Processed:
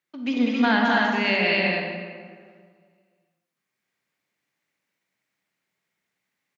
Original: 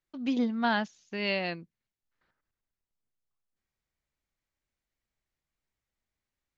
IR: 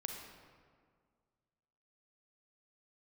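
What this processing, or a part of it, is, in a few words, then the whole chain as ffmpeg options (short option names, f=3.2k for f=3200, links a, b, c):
stadium PA: -filter_complex "[0:a]highpass=f=140:w=0.5412,highpass=f=140:w=1.3066,equalizer=f=2.1k:t=o:w=0.99:g=6,aecho=1:1:195.3|268.2:0.708|0.794[a];[1:a]atrim=start_sample=2205[b];[a][b]afir=irnorm=-1:irlink=0,volume=5.5dB"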